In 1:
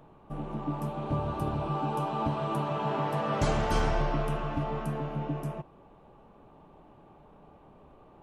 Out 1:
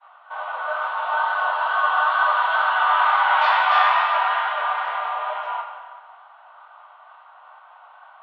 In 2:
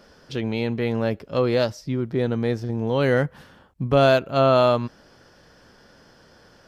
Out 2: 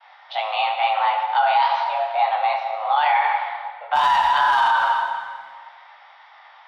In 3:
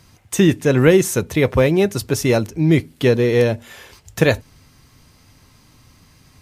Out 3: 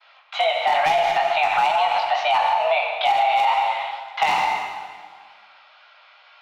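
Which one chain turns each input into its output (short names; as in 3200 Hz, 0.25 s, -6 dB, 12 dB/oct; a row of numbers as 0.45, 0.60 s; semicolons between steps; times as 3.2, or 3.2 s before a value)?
notch 1400 Hz, Q 12; expander -51 dBFS; mistuned SSB +320 Hz 410–3500 Hz; hard clip -12 dBFS; chorus 2.2 Hz, delay 18 ms, depth 5.2 ms; plate-style reverb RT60 1.7 s, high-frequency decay 0.85×, DRR 3.5 dB; limiter -20.5 dBFS; match loudness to -20 LUFS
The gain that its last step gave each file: +15.5, +10.5, +9.5 dB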